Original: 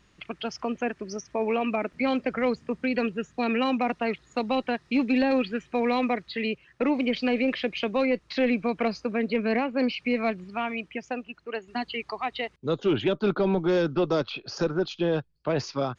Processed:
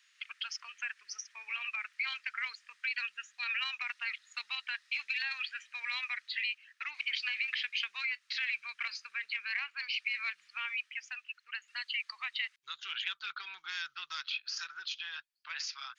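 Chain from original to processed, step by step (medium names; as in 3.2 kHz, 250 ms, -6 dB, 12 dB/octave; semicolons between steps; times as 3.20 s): inverse Chebyshev high-pass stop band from 610 Hz, stop band 50 dB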